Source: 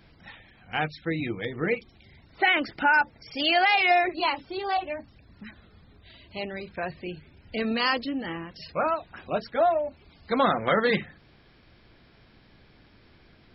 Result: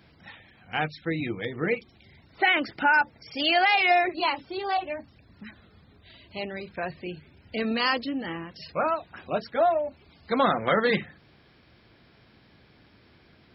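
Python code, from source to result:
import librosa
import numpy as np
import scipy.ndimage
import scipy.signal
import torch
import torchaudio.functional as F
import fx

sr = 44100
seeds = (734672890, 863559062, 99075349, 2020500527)

y = scipy.signal.sosfilt(scipy.signal.butter(2, 67.0, 'highpass', fs=sr, output='sos'), x)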